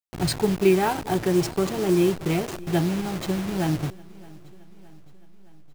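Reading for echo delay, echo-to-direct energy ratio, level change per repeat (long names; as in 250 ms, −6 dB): 617 ms, −21.0 dB, −5.0 dB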